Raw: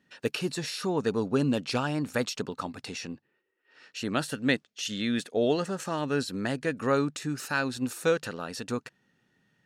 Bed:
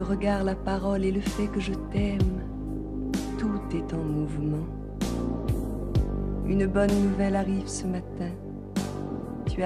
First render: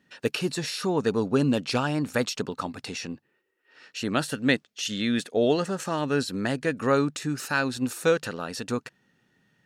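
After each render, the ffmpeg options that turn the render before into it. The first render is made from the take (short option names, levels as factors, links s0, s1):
-af "volume=1.41"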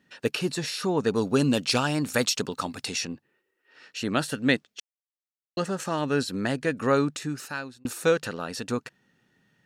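-filter_complex "[0:a]asettb=1/sr,asplit=3[s0][s1][s2];[s0]atrim=end=1.154[s3];[s1]atrim=start=1.15:end=3.05,asetpts=PTS-STARTPTS,afade=t=in:d=0.004:c=qsin,afade=t=out:st=1.896:d=0.004:c=qsin,highshelf=f=3300:g=9.5[s4];[s2]atrim=start=3.046[s5];[s3][s4]acrossfade=d=0.004:c1=hsin:c2=qsin[s6];[s6][s5]acrossfade=d=0.004:c1=qsin:c2=hsin,asplit=4[s7][s8][s9][s10];[s7]atrim=end=4.8,asetpts=PTS-STARTPTS,afade=t=out:st=4.796:d=0.004:c=hsin[s11];[s8]atrim=start=4.8:end=5.57,asetpts=PTS-STARTPTS,volume=0[s12];[s9]atrim=start=5.57:end=7.85,asetpts=PTS-STARTPTS,afade=t=in:d=0.004:c=hsin,afade=t=out:st=1.55:d=0.73[s13];[s10]atrim=start=7.85,asetpts=PTS-STARTPTS,afade=t=in:d=0.004:c=hsin[s14];[s11][s12][s13][s14]concat=n=4:v=0:a=1"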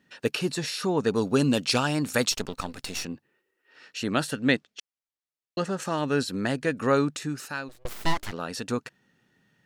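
-filter_complex "[0:a]asplit=3[s0][s1][s2];[s0]afade=t=out:st=2.31:d=0.02[s3];[s1]aeval=exprs='if(lt(val(0),0),0.251*val(0),val(0))':c=same,afade=t=in:st=2.31:d=0.02,afade=t=out:st=3.04:d=0.02[s4];[s2]afade=t=in:st=3.04:d=0.02[s5];[s3][s4][s5]amix=inputs=3:normalize=0,asettb=1/sr,asplit=3[s6][s7][s8];[s6]atrim=end=4.314[s9];[s7]atrim=start=4.31:end=5.82,asetpts=PTS-STARTPTS,afade=t=in:d=0.004:c=qsin,afade=t=out:st=1.506:d=0.004:c=qsin,highshelf=f=11000:g=-11.5[s10];[s8]atrim=start=5.816[s11];[s9][s10]acrossfade=d=0.004:c1=hsin:c2=qsin[s12];[s12][s11]acrossfade=d=0.004:c1=qsin:c2=hsin,asplit=3[s13][s14][s15];[s13]afade=t=out:st=7.68:d=0.02[s16];[s14]aeval=exprs='abs(val(0))':c=same,afade=t=in:st=7.68:d=0.02,afade=t=out:st=8.31:d=0.02[s17];[s15]afade=t=in:st=8.31:d=0.02[s18];[s16][s17][s18]amix=inputs=3:normalize=0"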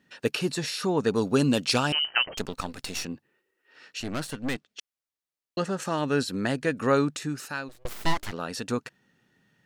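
-filter_complex "[0:a]asettb=1/sr,asplit=3[s0][s1][s2];[s0]atrim=end=1.924[s3];[s1]atrim=start=1.92:end=2.37,asetpts=PTS-STARTPTS,afade=t=in:d=0.004:c=qsin,afade=t=out:st=0.446:d=0.004:c=qsin,lowpass=f=2700:t=q:w=0.5098,lowpass=f=2700:t=q:w=0.6013,lowpass=f=2700:t=q:w=0.9,lowpass=f=2700:t=q:w=2.563,afreqshift=-3200[s4];[s2]atrim=start=2.366[s5];[s3][s4]acrossfade=d=0.004:c1=hsin:c2=qsin[s6];[s6][s5]acrossfade=d=0.004:c1=qsin:c2=hsin,asettb=1/sr,asplit=3[s7][s8][s9];[s7]atrim=end=4.004[s10];[s8]atrim=start=4:end=4.7,asetpts=PTS-STARTPTS,afade=t=in:d=0.004:c=qsin,afade=t=out:st=0.696:d=0.004:c=qsin,aeval=exprs='(tanh(20*val(0)+0.7)-tanh(0.7))/20':c=same[s11];[s9]atrim=start=4.696[s12];[s10][s11]acrossfade=d=0.004:c1=hsin:c2=qsin[s13];[s13][s12]acrossfade=d=0.004:c1=qsin:c2=hsin"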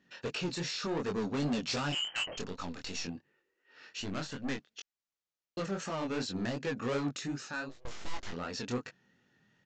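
-af "aresample=16000,asoftclip=type=tanh:threshold=0.0447,aresample=44100,flanger=delay=20:depth=5.2:speed=2.7"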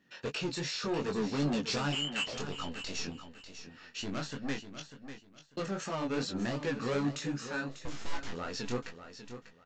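-filter_complex "[0:a]asplit=2[s0][s1];[s1]adelay=14,volume=0.316[s2];[s0][s2]amix=inputs=2:normalize=0,aecho=1:1:595|1190|1785:0.282|0.0676|0.0162"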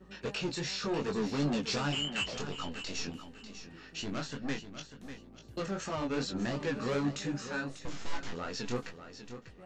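-filter_complex "[1:a]volume=0.0501[s0];[0:a][s0]amix=inputs=2:normalize=0"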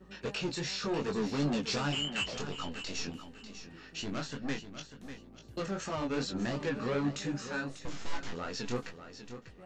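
-filter_complex "[0:a]asettb=1/sr,asplit=3[s0][s1][s2];[s0]atrim=end=6.694[s3];[s1]atrim=start=6.69:end=7.14,asetpts=PTS-STARTPTS,afade=t=in:d=0.004:c=qsin,afade=t=out:st=0.446:d=0.004:c=qsin,acrossover=split=4100[s4][s5];[s5]acompressor=threshold=0.001:ratio=4:attack=1:release=60[s6];[s4][s6]amix=inputs=2:normalize=0[s7];[s2]atrim=start=7.136[s8];[s3][s7]acrossfade=d=0.004:c1=hsin:c2=qsin[s9];[s9][s8]acrossfade=d=0.004:c1=qsin:c2=hsin"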